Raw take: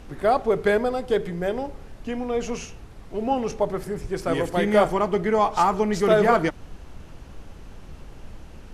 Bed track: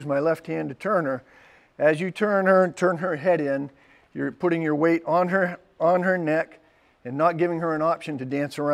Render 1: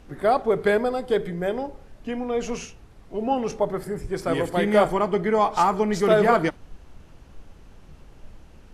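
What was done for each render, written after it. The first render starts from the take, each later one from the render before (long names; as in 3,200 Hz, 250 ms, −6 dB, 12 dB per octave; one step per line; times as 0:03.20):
noise reduction from a noise print 6 dB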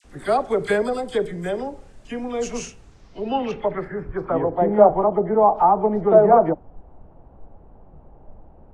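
all-pass dispersion lows, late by 47 ms, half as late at 1,400 Hz
low-pass filter sweep 8,400 Hz → 770 Hz, 0:02.78–0:04.50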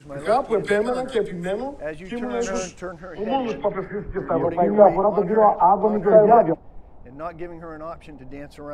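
mix in bed track −11.5 dB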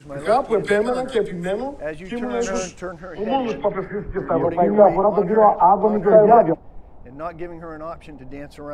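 level +2 dB
brickwall limiter −2 dBFS, peak gain reduction 2.5 dB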